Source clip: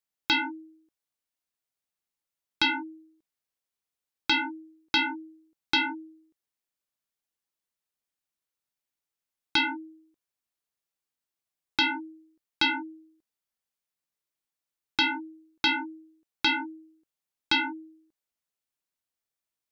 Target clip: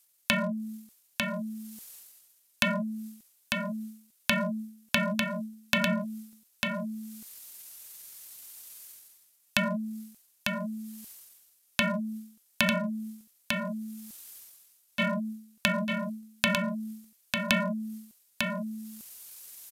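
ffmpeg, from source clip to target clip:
-filter_complex "[0:a]acrossover=split=840[a][b];[a]volume=32dB,asoftclip=hard,volume=-32dB[c];[b]acompressor=threshold=-37dB:ratio=10[d];[c][d]amix=inputs=2:normalize=0,aemphasis=mode=production:type=75kf,asetrate=30296,aresample=44100,atempo=1.45565,aecho=1:1:898:0.596,areverse,acompressor=mode=upward:threshold=-36dB:ratio=2.5,areverse,volume=5.5dB"

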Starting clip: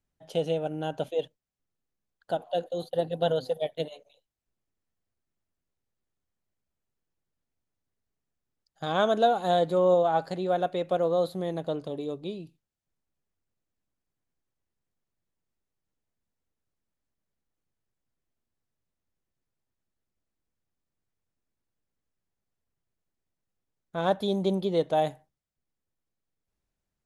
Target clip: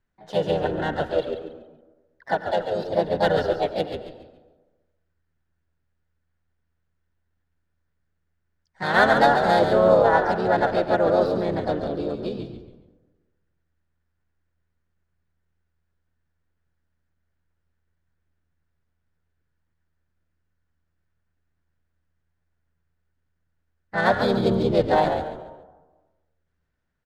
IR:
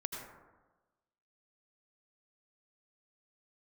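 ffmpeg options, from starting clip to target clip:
-filter_complex "[0:a]equalizer=f=1.5k:t=o:w=0.27:g=12.5,adynamicsmooth=sensitivity=6:basefreq=4.5k,asplit=4[a][b][c][d];[b]asetrate=29433,aresample=44100,atempo=1.49831,volume=-12dB[e];[c]asetrate=52444,aresample=44100,atempo=0.840896,volume=-2dB[f];[d]asetrate=58866,aresample=44100,atempo=0.749154,volume=-12dB[g];[a][e][f][g]amix=inputs=4:normalize=0,asplit=5[h][i][j][k][l];[i]adelay=140,afreqshift=-81,volume=-7dB[m];[j]adelay=280,afreqshift=-162,volume=-17.2dB[n];[k]adelay=420,afreqshift=-243,volume=-27.3dB[o];[l]adelay=560,afreqshift=-324,volume=-37.5dB[p];[h][m][n][o][p]amix=inputs=5:normalize=0,asplit=2[q][r];[1:a]atrim=start_sample=2205,asetrate=41013,aresample=44100[s];[r][s]afir=irnorm=-1:irlink=0,volume=-8.5dB[t];[q][t]amix=inputs=2:normalize=0"

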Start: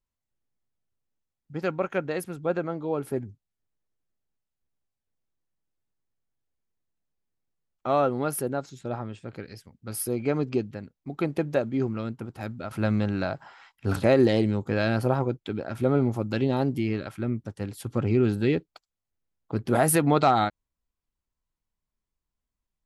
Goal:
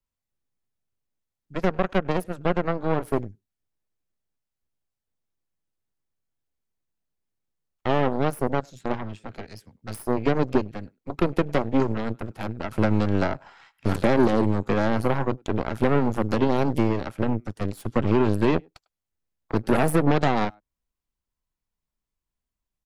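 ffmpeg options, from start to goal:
-filter_complex "[0:a]acrossover=split=270|1100[a][b][c];[a]acompressor=threshold=-27dB:ratio=4[d];[b]acompressor=threshold=-30dB:ratio=4[e];[c]acompressor=threshold=-44dB:ratio=4[f];[d][e][f]amix=inputs=3:normalize=0,asplit=2[g][h];[h]adelay=100,highpass=300,lowpass=3.4k,asoftclip=type=hard:threshold=-25dB,volume=-21dB[i];[g][i]amix=inputs=2:normalize=0,acrossover=split=130|4200[j][k][l];[j]asoftclip=type=tanh:threshold=-35.5dB[m];[m][k][l]amix=inputs=3:normalize=0,aeval=exprs='0.158*(cos(1*acos(clip(val(0)/0.158,-1,1)))-cos(1*PI/2))+0.0316*(cos(6*acos(clip(val(0)/0.158,-1,1)))-cos(6*PI/2))+0.0126*(cos(7*acos(clip(val(0)/0.158,-1,1)))-cos(7*PI/2))':c=same,volume=6.5dB"

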